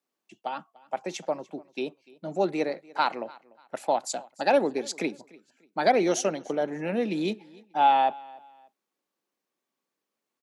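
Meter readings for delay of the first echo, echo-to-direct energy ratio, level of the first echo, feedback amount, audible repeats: 0.294 s, -22.5 dB, -23.0 dB, 30%, 2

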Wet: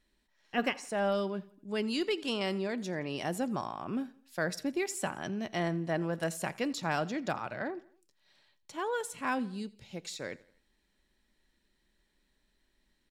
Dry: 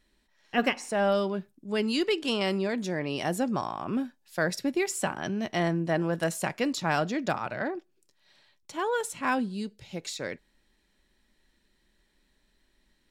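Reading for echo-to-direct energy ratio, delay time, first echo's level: -20.5 dB, 85 ms, -21.5 dB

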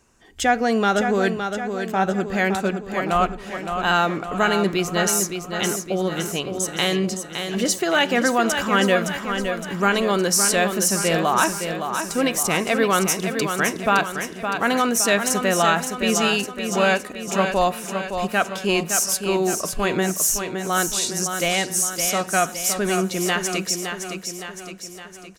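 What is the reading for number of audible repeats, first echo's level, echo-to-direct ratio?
6, -7.0 dB, -5.5 dB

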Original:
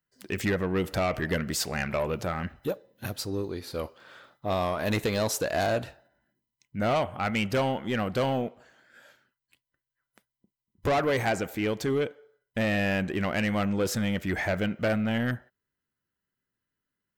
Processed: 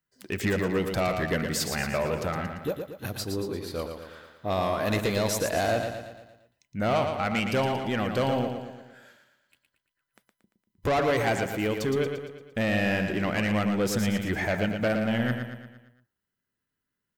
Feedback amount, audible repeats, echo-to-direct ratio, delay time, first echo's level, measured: 51%, 5, -5.0 dB, 0.115 s, -6.5 dB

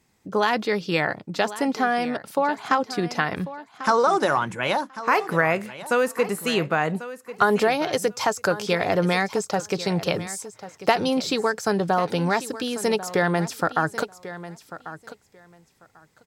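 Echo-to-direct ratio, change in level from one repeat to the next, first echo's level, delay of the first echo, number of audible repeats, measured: -14.5 dB, -16.0 dB, -14.5 dB, 1.093 s, 2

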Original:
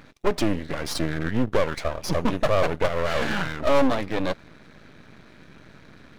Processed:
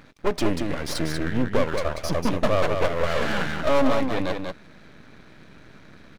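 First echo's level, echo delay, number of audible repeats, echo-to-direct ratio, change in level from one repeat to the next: -5.0 dB, 0.189 s, 1, -5.0 dB, no steady repeat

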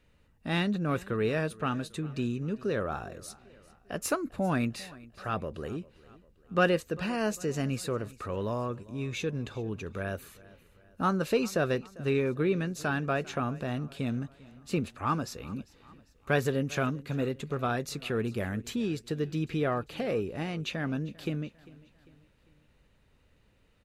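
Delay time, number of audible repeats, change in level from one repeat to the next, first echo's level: 0.398 s, 3, -6.5 dB, -21.0 dB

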